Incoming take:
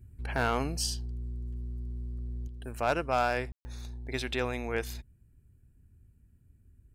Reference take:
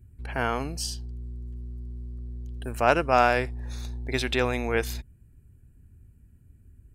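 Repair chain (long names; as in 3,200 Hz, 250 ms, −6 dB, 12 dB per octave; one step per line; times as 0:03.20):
clipped peaks rebuilt −18 dBFS
ambience match 0:03.52–0:03.65
level correction +6.5 dB, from 0:02.48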